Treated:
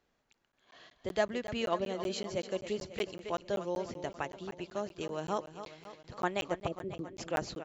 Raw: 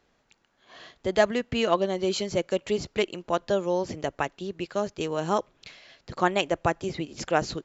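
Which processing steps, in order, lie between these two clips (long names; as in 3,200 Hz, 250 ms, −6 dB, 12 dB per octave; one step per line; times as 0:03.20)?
0:06.67–0:07.17: Butterworth low-pass 620 Hz 48 dB per octave
repeating echo 272 ms, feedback 58%, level −11.5 dB
regular buffer underruns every 0.19 s, samples 512, zero, from 0:00.33
level −9 dB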